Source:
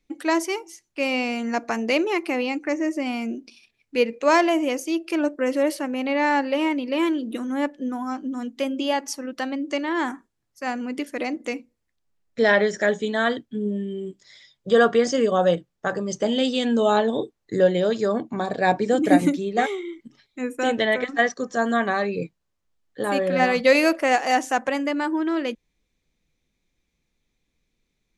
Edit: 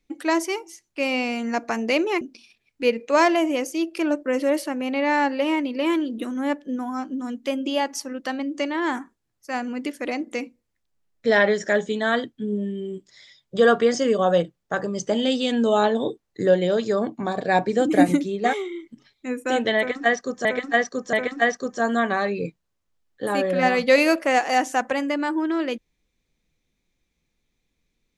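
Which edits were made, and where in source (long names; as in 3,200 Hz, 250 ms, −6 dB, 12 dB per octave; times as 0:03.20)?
0:02.21–0:03.34: remove
0:20.90–0:21.58: repeat, 3 plays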